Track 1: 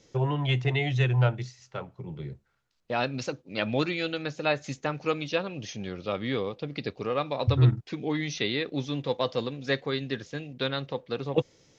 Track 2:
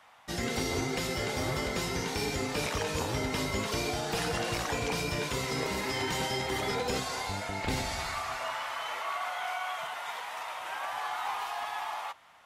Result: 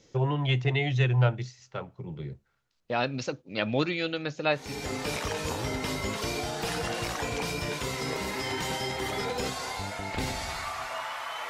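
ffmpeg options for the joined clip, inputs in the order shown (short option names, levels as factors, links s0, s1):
-filter_complex "[0:a]apad=whole_dur=11.49,atrim=end=11.49,atrim=end=4.96,asetpts=PTS-STARTPTS[s0];[1:a]atrim=start=2:end=8.99,asetpts=PTS-STARTPTS[s1];[s0][s1]acrossfade=d=0.46:c1=tri:c2=tri"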